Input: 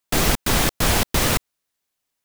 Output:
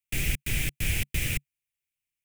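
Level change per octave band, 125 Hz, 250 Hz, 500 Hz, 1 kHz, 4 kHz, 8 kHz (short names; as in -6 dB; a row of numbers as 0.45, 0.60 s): -6.0, -14.5, -20.5, -27.0, -12.0, -11.0 dB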